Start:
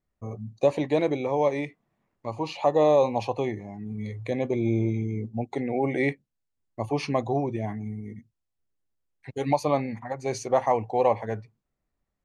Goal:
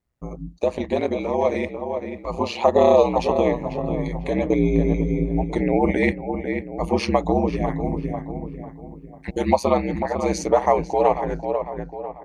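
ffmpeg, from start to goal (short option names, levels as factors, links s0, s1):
-filter_complex "[0:a]dynaudnorm=f=320:g=9:m=2.51,asplit=2[s0][s1];[s1]adelay=496,lowpass=f=1900:p=1,volume=0.398,asplit=2[s2][s3];[s3]adelay=496,lowpass=f=1900:p=1,volume=0.38,asplit=2[s4][s5];[s5]adelay=496,lowpass=f=1900:p=1,volume=0.38,asplit=2[s6][s7];[s7]adelay=496,lowpass=f=1900:p=1,volume=0.38[s8];[s0][s2][s4][s6][s8]amix=inputs=5:normalize=0,asplit=2[s9][s10];[s10]acompressor=threshold=0.0355:ratio=6,volume=0.891[s11];[s9][s11]amix=inputs=2:normalize=0,aeval=exprs='val(0)*sin(2*PI*60*n/s)':c=same"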